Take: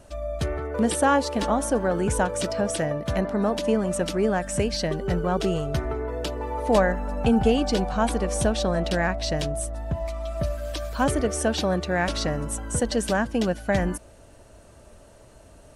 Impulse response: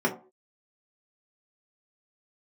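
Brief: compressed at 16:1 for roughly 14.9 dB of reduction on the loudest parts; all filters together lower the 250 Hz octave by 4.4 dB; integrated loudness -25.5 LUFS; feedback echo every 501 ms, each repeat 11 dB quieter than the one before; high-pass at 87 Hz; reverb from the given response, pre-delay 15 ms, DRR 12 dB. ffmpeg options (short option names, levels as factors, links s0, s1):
-filter_complex "[0:a]highpass=87,equalizer=f=250:t=o:g=-5.5,acompressor=threshold=0.0282:ratio=16,aecho=1:1:501|1002|1503:0.282|0.0789|0.0221,asplit=2[s0][s1];[1:a]atrim=start_sample=2205,adelay=15[s2];[s1][s2]afir=irnorm=-1:irlink=0,volume=0.0596[s3];[s0][s3]amix=inputs=2:normalize=0,volume=2.99"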